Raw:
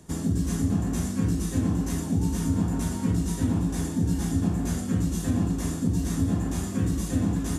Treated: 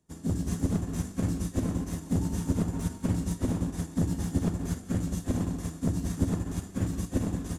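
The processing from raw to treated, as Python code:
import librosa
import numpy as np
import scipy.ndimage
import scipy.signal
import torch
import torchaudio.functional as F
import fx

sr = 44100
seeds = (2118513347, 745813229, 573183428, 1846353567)

y = np.minimum(x, 2.0 * 10.0 ** (-20.5 / 20.0) - x)
y = fx.echo_feedback(y, sr, ms=179, feedback_pct=38, wet_db=-7.5)
y = fx.upward_expand(y, sr, threshold_db=-36.0, expansion=2.5)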